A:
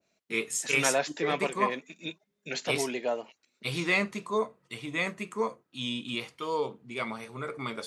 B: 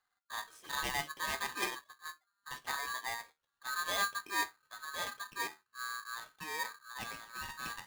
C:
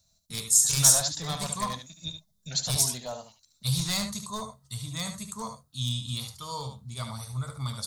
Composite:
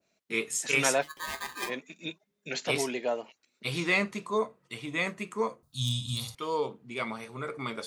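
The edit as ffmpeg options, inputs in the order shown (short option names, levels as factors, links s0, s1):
-filter_complex "[0:a]asplit=3[s0][s1][s2];[s0]atrim=end=1.05[s3];[1:a]atrim=start=1.01:end=1.71[s4];[s1]atrim=start=1.67:end=5.632[s5];[2:a]atrim=start=5.628:end=6.352[s6];[s2]atrim=start=6.348[s7];[s3][s4]acrossfade=d=0.04:c1=tri:c2=tri[s8];[s8][s5]acrossfade=d=0.04:c1=tri:c2=tri[s9];[s9][s6]acrossfade=d=0.004:c1=hsin:c2=hsin[s10];[s10][s7]acrossfade=d=0.004:c1=hsin:c2=hsin"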